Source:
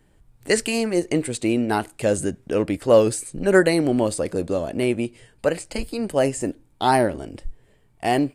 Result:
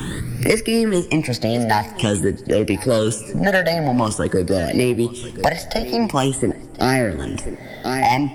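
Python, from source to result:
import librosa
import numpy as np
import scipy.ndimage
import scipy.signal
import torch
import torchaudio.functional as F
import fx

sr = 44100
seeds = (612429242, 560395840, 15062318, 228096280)

y = fx.phaser_stages(x, sr, stages=8, low_hz=320.0, high_hz=1000.0, hz=0.48, feedback_pct=25)
y = 10.0 ** (-13.5 / 20.0) * np.tanh(y / 10.0 ** (-13.5 / 20.0))
y = fx.formant_shift(y, sr, semitones=2)
y = y + 10.0 ** (-21.5 / 20.0) * np.pad(y, (int(1035 * sr / 1000.0), 0))[:len(y)]
y = fx.rev_plate(y, sr, seeds[0], rt60_s=1.5, hf_ratio=0.65, predelay_ms=0, drr_db=19.5)
y = fx.band_squash(y, sr, depth_pct=100)
y = y * librosa.db_to_amplitude(8.0)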